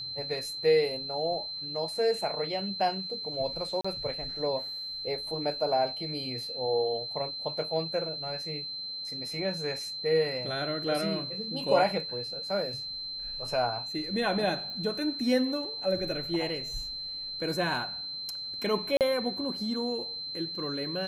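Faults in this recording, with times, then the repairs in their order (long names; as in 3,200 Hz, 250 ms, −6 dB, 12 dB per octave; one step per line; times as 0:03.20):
whistle 4,100 Hz −35 dBFS
0:03.81–0:03.85: drop-out 35 ms
0:14.70: click −29 dBFS
0:18.97–0:19.01: drop-out 38 ms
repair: click removal
notch filter 4,100 Hz, Q 30
repair the gap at 0:03.81, 35 ms
repair the gap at 0:18.97, 38 ms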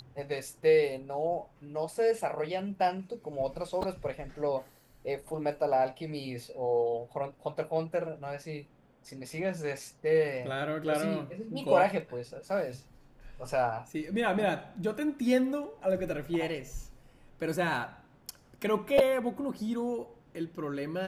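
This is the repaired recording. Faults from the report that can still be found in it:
none of them is left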